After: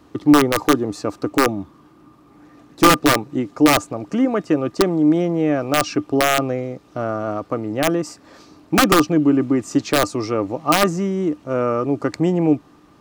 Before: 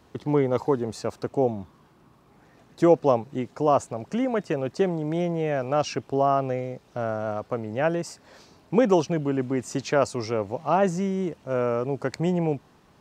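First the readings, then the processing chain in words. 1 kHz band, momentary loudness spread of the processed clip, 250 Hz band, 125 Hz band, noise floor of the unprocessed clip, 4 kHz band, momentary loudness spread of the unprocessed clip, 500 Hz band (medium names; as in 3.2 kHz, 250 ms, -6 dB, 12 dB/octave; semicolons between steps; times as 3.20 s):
+6.5 dB, 11 LU, +9.5 dB, +3.5 dB, -58 dBFS, +15.5 dB, 10 LU, +3.0 dB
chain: integer overflow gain 12.5 dB; small resonant body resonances 300/1200 Hz, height 15 dB, ringing for 95 ms; trim +3.5 dB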